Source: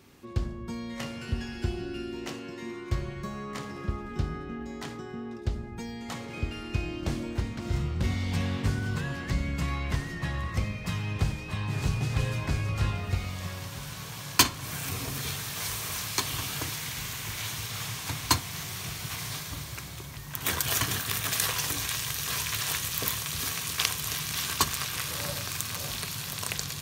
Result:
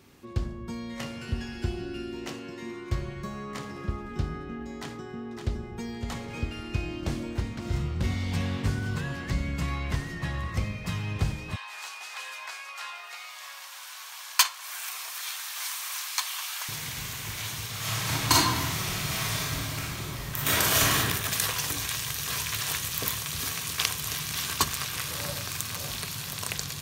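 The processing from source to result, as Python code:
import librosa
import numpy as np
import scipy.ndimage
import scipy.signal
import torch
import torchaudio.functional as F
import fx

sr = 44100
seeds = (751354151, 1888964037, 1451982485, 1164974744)

y = fx.echo_throw(x, sr, start_s=4.8, length_s=1.08, ms=560, feedback_pct=20, wet_db=-6.0)
y = fx.highpass(y, sr, hz=840.0, slope=24, at=(11.56, 16.69))
y = fx.reverb_throw(y, sr, start_s=17.79, length_s=3.19, rt60_s=1.1, drr_db=-6.0)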